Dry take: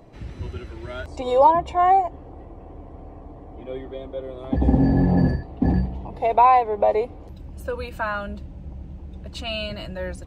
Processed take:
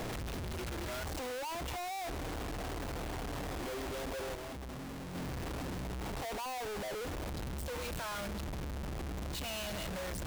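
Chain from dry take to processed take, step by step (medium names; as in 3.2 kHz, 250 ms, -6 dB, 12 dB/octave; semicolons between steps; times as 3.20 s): one-bit comparator; 4.35–5.15 s: expander -14 dBFS; saturation -37.5 dBFS, distortion -17 dB; trim -1.5 dB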